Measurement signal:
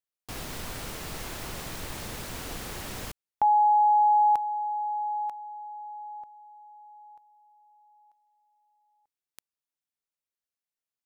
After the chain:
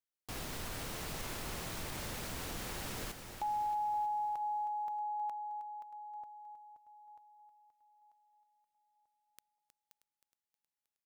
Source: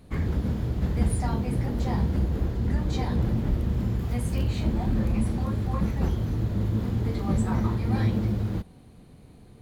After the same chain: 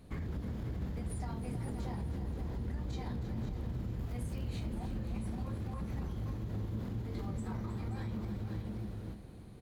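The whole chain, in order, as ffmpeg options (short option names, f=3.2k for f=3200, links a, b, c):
-filter_complex "[0:a]asplit=2[a][b];[b]aecho=0:1:526:0.316[c];[a][c]amix=inputs=2:normalize=0,acompressor=threshold=-29dB:ratio=6:attack=0.37:release=112:knee=1:detection=rms,asplit=2[d][e];[e]aecho=0:1:315|630|945|1260|1575|1890:0.266|0.144|0.0776|0.0419|0.0226|0.0122[f];[d][f]amix=inputs=2:normalize=0,volume=-4.5dB"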